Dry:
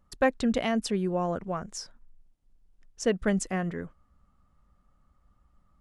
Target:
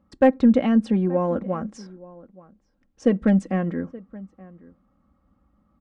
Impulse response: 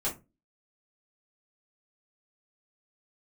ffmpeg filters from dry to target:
-filter_complex "[0:a]aemphasis=mode=reproduction:type=riaa,aresample=22050,aresample=44100,lowshelf=f=340:g=4,bandreject=f=7.2k:w=21,asplit=2[a][b];[b]adelay=874.6,volume=-21dB,highshelf=f=4k:g=-19.7[c];[a][c]amix=inputs=2:normalize=0,acrossover=split=3000[d][e];[e]alimiter=level_in=16.5dB:limit=-24dB:level=0:latency=1:release=83,volume=-16.5dB[f];[d][f]amix=inputs=2:normalize=0,highpass=220,asplit=2[g][h];[1:a]atrim=start_sample=2205[i];[h][i]afir=irnorm=-1:irlink=0,volume=-28dB[j];[g][j]amix=inputs=2:normalize=0,asoftclip=type=hard:threshold=-10.5dB,acontrast=78,aecho=1:1:3.7:0.56,volume=-5.5dB"

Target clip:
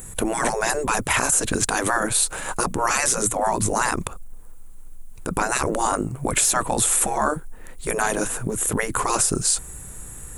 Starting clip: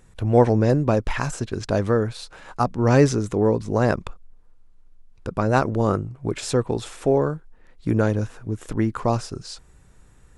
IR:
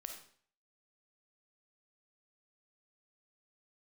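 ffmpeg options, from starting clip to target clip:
-af "aexciter=amount=7.5:drive=6.9:freq=7.3k,afftfilt=real='re*lt(hypot(re,im),0.224)':imag='im*lt(hypot(re,im),0.224)':win_size=1024:overlap=0.75,alimiter=level_in=20dB:limit=-1dB:release=50:level=0:latency=1,volume=-8dB"

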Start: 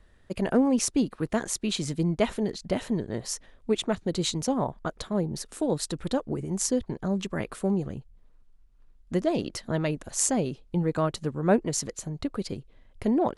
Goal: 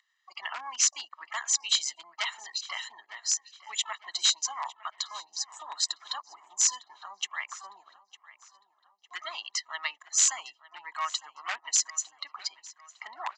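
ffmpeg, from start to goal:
-filter_complex "[0:a]asplit=2[a][b];[b]asetrate=88200,aresample=44100,atempo=0.5,volume=-17dB[c];[a][c]amix=inputs=2:normalize=0,afftdn=nr=21:nf=-45,highshelf=f=2.8k:g=7.5,aecho=1:1:1:0.81,acompressor=mode=upward:threshold=-35dB:ratio=2.5,aresample=16000,aeval=exprs='0.178*(abs(mod(val(0)/0.178+3,4)-2)-1)':c=same,aresample=44100,highpass=f=1.1k:w=0.5412,highpass=f=1.1k:w=1.3066,asplit=2[d][e];[e]adelay=905,lowpass=f=4.1k:p=1,volume=-17.5dB,asplit=2[f][g];[g]adelay=905,lowpass=f=4.1k:p=1,volume=0.5,asplit=2[h][i];[i]adelay=905,lowpass=f=4.1k:p=1,volume=0.5,asplit=2[j][k];[k]adelay=905,lowpass=f=4.1k:p=1,volume=0.5[l];[d][f][h][j][l]amix=inputs=5:normalize=0"

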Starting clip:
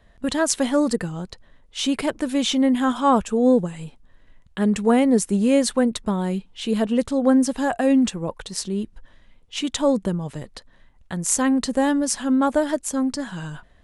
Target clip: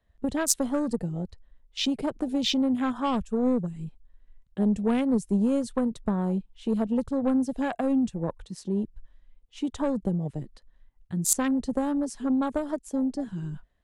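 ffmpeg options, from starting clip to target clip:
-filter_complex "[0:a]afwtdn=0.0398,aeval=exprs='0.708*(cos(1*acos(clip(val(0)/0.708,-1,1)))-cos(1*PI/2))+0.0282*(cos(7*acos(clip(val(0)/0.708,-1,1)))-cos(7*PI/2))':c=same,acrossover=split=180|3000[a][b][c];[b]acompressor=threshold=-28dB:ratio=6[d];[a][d][c]amix=inputs=3:normalize=0,volume=2dB"

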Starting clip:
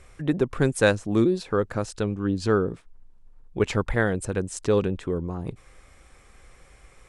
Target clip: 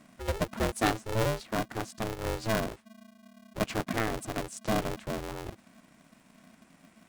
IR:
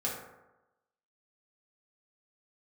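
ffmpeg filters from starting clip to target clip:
-af "aeval=exprs='val(0)*sgn(sin(2*PI*220*n/s))':c=same,volume=-7.5dB"

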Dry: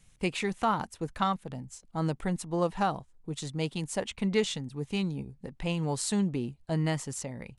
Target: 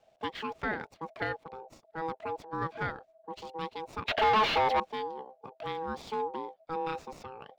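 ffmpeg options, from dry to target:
-filter_complex "[0:a]aeval=exprs='val(0)*sin(2*PI*650*n/s)':c=same,lowshelf=f=71:g=-11.5,asettb=1/sr,asplit=3[a][b][c];[a]atrim=end=4.084[d];[b]atrim=start=4.08:end=4.8,asetpts=PTS-STARTPTS,afade=t=in:d=0.004:c=qsin,afade=t=out:st=0.716:d=0.004:c=qsin,asplit=2[e][f];[f]highpass=f=720:p=1,volume=38dB,asoftclip=type=tanh:threshold=-14.5dB[g];[e][g]amix=inputs=2:normalize=0,lowpass=f=3.8k:p=1,volume=-6dB[h];[c]atrim=start=4.796[i];[d][h]acrossfade=d=0.004:c1=hsin:c2=qsin[j];[j][i]acrossfade=d=0.004:c1=qsin:c2=hsin,acrossover=split=4300[k][l];[l]acompressor=threshold=-43dB:ratio=4:attack=1:release=60[m];[k][m]amix=inputs=2:normalize=0,acrossover=split=5500[n][o];[o]acrusher=samples=27:mix=1:aa=0.000001[p];[n][p]amix=inputs=2:normalize=0,volume=-2.5dB"

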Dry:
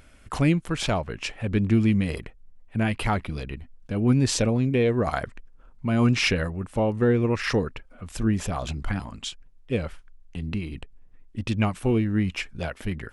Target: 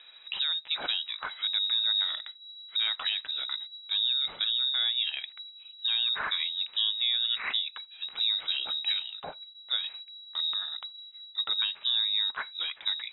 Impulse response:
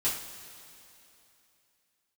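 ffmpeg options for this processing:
-filter_complex "[0:a]alimiter=limit=-21dB:level=0:latency=1:release=432,asplit=2[a][b];[1:a]atrim=start_sample=2205,atrim=end_sample=3969[c];[b][c]afir=irnorm=-1:irlink=0,volume=-26.5dB[d];[a][d]amix=inputs=2:normalize=0,lowpass=f=3.3k:t=q:w=0.5098,lowpass=f=3.3k:t=q:w=0.6013,lowpass=f=3.3k:t=q:w=0.9,lowpass=f=3.3k:t=q:w=2.563,afreqshift=-3900"

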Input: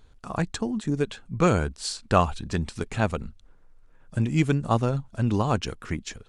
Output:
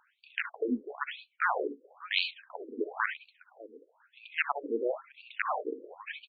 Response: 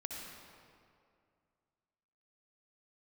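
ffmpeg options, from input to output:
-filter_complex "[0:a]lowpass=4.8k,highshelf=f=3.8k:g=-7,asplit=2[a][b];[b]acompressor=threshold=-31dB:ratio=10,volume=0.5dB[c];[a][c]amix=inputs=2:normalize=0,aecho=1:1:601:0.158,aeval=exprs='(mod(3.55*val(0)+1,2)-1)/3.55':c=same[d];[1:a]atrim=start_sample=2205,atrim=end_sample=3528[e];[d][e]afir=irnorm=-1:irlink=0,afftfilt=real='re*between(b*sr/1024,340*pow(3300/340,0.5+0.5*sin(2*PI*1*pts/sr))/1.41,340*pow(3300/340,0.5+0.5*sin(2*PI*1*pts/sr))*1.41)':imag='im*between(b*sr/1024,340*pow(3300/340,0.5+0.5*sin(2*PI*1*pts/sr))/1.41,340*pow(3300/340,0.5+0.5*sin(2*PI*1*pts/sr))*1.41)':win_size=1024:overlap=0.75,volume=3dB"

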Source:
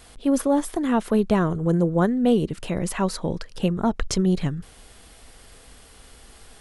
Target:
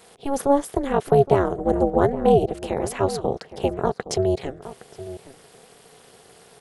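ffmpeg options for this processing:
-filter_complex "[0:a]highpass=f=410:t=q:w=3.5,tremolo=f=280:d=0.974,asplit=2[a][b];[b]adelay=816.3,volume=-14dB,highshelf=f=4k:g=-18.4[c];[a][c]amix=inputs=2:normalize=0,volume=2dB"

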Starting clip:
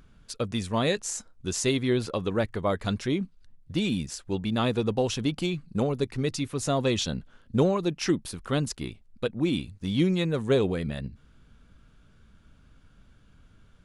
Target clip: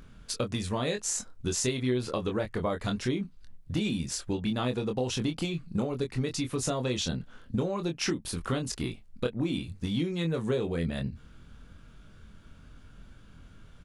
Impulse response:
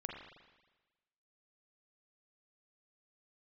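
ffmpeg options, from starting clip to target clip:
-filter_complex "[0:a]acompressor=threshold=-31dB:ratio=10,asplit=2[a][b];[b]adelay=24,volume=-5.5dB[c];[a][c]amix=inputs=2:normalize=0,volume=4dB"

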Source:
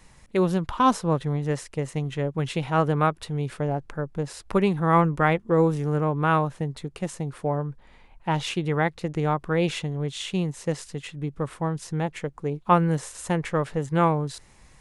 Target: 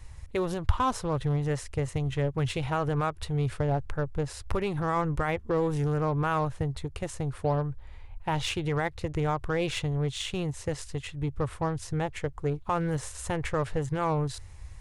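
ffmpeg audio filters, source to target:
-af "alimiter=limit=-17.5dB:level=0:latency=1:release=96,aeval=exprs='0.133*(cos(1*acos(clip(val(0)/0.133,-1,1)))-cos(1*PI/2))+0.00376*(cos(7*acos(clip(val(0)/0.133,-1,1)))-cos(7*PI/2))':c=same,lowshelf=f=130:t=q:w=3:g=11.5"

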